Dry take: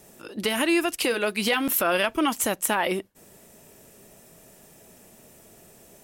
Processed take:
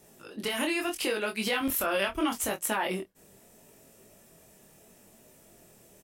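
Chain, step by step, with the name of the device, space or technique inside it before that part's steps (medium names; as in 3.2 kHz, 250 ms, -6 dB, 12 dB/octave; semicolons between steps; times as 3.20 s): 1.61–2.51 s: resonant low shelf 110 Hz +9 dB, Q 1.5; double-tracked vocal (doubling 26 ms -11 dB; chorus 0.76 Hz, delay 18 ms, depth 7.7 ms); trim -2.5 dB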